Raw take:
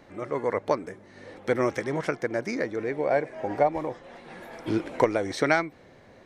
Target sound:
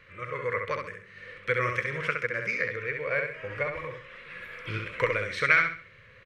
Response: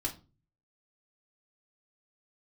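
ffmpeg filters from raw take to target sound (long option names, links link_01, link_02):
-filter_complex "[0:a]firequalizer=gain_entry='entry(120,0);entry(280,-22);entry(500,-3);entry(770,-28);entry(1100,1);entry(1700,4);entry(2500,9);entry(3700,-2);entry(5700,-9)':delay=0.05:min_phase=1,asplit=2[link_01][link_02];[link_02]aecho=0:1:66|132|198|264:0.562|0.186|0.0612|0.0202[link_03];[link_01][link_03]amix=inputs=2:normalize=0"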